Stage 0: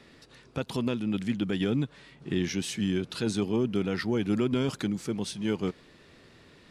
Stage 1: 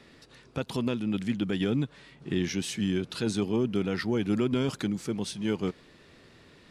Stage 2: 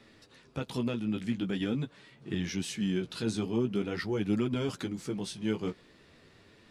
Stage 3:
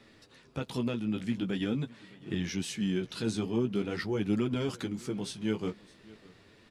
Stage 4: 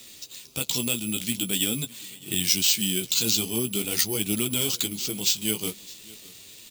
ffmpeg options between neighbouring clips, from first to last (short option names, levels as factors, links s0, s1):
-af anull
-af "flanger=delay=9:depth=9.1:regen=-19:speed=0.45:shape=sinusoidal"
-af "aecho=1:1:610:0.0794"
-af "acrusher=samples=4:mix=1:aa=0.000001,aexciter=amount=8.4:drive=4.9:freq=2500"